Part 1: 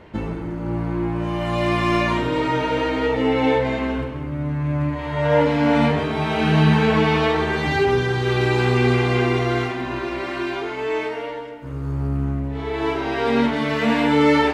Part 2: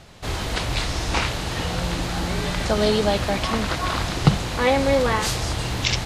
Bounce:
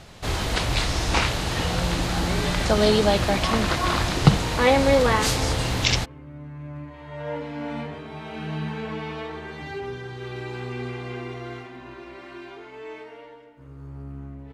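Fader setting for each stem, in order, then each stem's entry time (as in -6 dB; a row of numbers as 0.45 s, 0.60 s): -14.5 dB, +1.0 dB; 1.95 s, 0.00 s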